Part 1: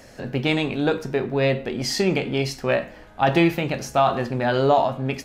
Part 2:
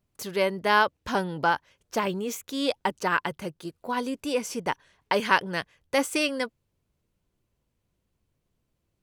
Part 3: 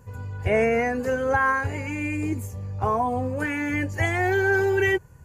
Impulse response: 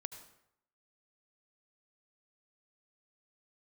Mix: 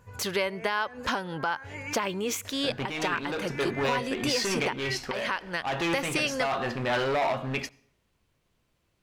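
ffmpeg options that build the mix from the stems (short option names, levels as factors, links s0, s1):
-filter_complex "[0:a]alimiter=limit=0.266:level=0:latency=1:release=165,acontrast=29,asoftclip=type=hard:threshold=0.141,adelay=2450,volume=0.251,asplit=2[s0][s1];[s1]volume=0.211[s2];[1:a]acompressor=threshold=0.0316:ratio=4,volume=1.12,asplit=3[s3][s4][s5];[s4]volume=0.126[s6];[2:a]alimiter=limit=0.0841:level=0:latency=1:release=400,volume=0.355[s7];[s5]apad=whole_len=231298[s8];[s7][s8]sidechaincompress=threshold=0.00501:ratio=8:attack=11:release=131[s9];[3:a]atrim=start_sample=2205[s10];[s2][s6]amix=inputs=2:normalize=0[s11];[s11][s10]afir=irnorm=-1:irlink=0[s12];[s0][s3][s9][s12]amix=inputs=4:normalize=0,equalizer=f=2100:w=0.32:g=8.5,alimiter=limit=0.158:level=0:latency=1:release=318"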